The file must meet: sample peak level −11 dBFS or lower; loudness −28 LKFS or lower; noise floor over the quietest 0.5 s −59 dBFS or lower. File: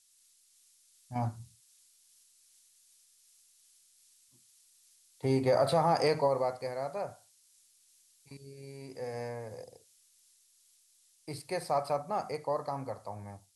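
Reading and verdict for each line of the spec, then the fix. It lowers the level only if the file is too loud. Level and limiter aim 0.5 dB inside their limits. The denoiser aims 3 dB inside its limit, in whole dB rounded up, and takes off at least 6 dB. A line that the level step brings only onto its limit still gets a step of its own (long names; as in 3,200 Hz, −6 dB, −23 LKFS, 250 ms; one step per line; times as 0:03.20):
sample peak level −16.5 dBFS: in spec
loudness −33.0 LKFS: in spec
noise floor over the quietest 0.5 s −67 dBFS: in spec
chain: no processing needed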